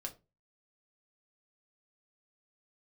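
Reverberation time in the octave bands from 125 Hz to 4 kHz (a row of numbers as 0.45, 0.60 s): 0.45, 0.35, 0.30, 0.25, 0.20, 0.20 s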